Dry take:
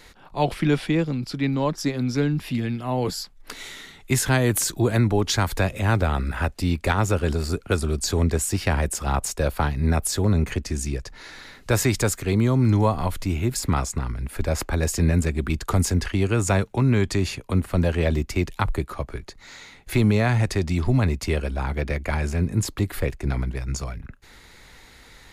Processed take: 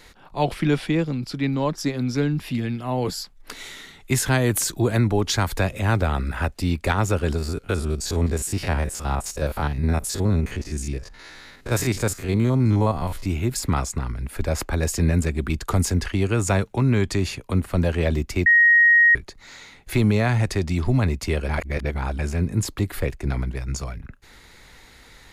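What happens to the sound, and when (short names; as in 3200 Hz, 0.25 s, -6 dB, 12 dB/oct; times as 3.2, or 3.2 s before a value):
7.38–13.26 stepped spectrum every 50 ms
18.46–19.15 bleep 1880 Hz -11 dBFS
21.49–22.19 reverse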